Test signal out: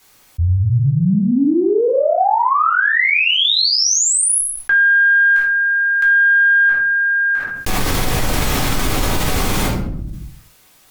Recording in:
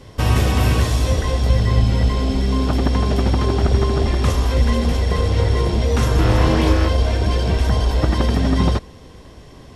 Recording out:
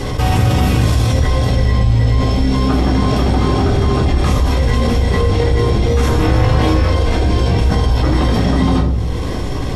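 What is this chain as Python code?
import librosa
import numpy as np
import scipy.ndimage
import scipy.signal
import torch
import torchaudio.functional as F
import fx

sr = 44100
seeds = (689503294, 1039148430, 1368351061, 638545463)

y = fx.cheby_harmonics(x, sr, harmonics=(2,), levels_db=(-29,), full_scale_db=-3.5)
y = fx.room_shoebox(y, sr, seeds[0], volume_m3=400.0, walls='furnished', distance_m=3.9)
y = fx.env_flatten(y, sr, amount_pct=70)
y = y * 10.0 ** (-8.0 / 20.0)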